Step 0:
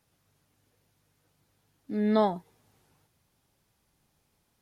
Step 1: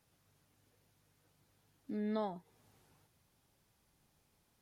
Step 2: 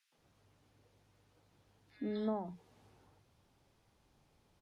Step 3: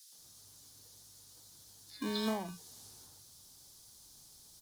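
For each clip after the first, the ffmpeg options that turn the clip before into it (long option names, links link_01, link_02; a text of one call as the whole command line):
ffmpeg -i in.wav -af "acompressor=threshold=-41dB:ratio=2,volume=-2dB" out.wav
ffmpeg -i in.wav -filter_complex "[0:a]acrossover=split=240|3000[link_01][link_02][link_03];[link_02]acompressor=threshold=-45dB:ratio=2[link_04];[link_01][link_04][link_03]amix=inputs=3:normalize=0,aemphasis=mode=reproduction:type=50fm,acrossover=split=170|1700[link_05][link_06][link_07];[link_06]adelay=120[link_08];[link_05]adelay=170[link_09];[link_09][link_08][link_07]amix=inputs=3:normalize=0,volume=5dB" out.wav
ffmpeg -i in.wav -filter_complex "[0:a]aexciter=amount=16:drive=3:freq=3800,acrossover=split=500|760[link_01][link_02][link_03];[link_01]acrusher=samples=33:mix=1:aa=0.000001[link_04];[link_04][link_02][link_03]amix=inputs=3:normalize=0,volume=2dB" out.wav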